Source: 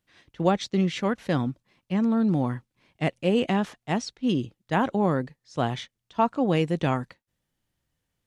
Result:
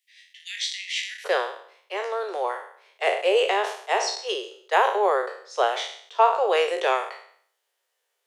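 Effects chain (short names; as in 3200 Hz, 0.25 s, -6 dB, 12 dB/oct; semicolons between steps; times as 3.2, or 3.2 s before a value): spectral trails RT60 0.59 s; steep high-pass 1800 Hz 96 dB/oct, from 1.24 s 390 Hz; gain +4.5 dB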